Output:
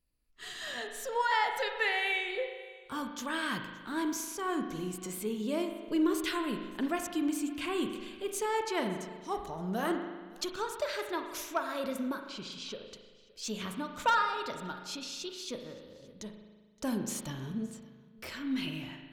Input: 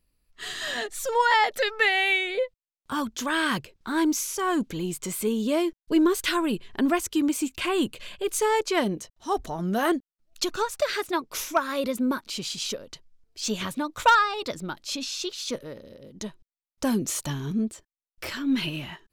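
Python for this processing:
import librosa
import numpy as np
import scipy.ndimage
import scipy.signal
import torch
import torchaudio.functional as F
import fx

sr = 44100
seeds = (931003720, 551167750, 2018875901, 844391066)

y = fx.lowpass(x, sr, hz=4500.0, slope=12, at=(12.21, 12.91))
y = y + 10.0 ** (-23.0 / 20.0) * np.pad(y, (int(569 * sr / 1000.0), 0))[:len(y)]
y = fx.rev_spring(y, sr, rt60_s=1.4, pass_ms=(38,), chirp_ms=25, drr_db=5.0)
y = y * 10.0 ** (-9.0 / 20.0)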